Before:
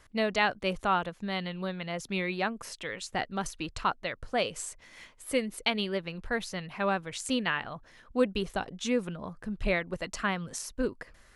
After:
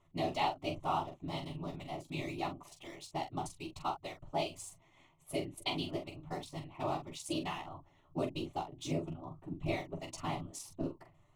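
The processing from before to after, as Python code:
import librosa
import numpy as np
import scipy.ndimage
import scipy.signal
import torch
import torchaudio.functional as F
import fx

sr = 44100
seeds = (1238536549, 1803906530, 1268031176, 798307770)

p1 = fx.wiener(x, sr, points=9)
p2 = fx.whisperise(p1, sr, seeds[0])
p3 = fx.fixed_phaser(p2, sr, hz=320.0, stages=8)
p4 = p3 + fx.room_early_taps(p3, sr, ms=(12, 44), db=(-6.0, -7.5), dry=0)
y = p4 * 10.0 ** (-5.0 / 20.0)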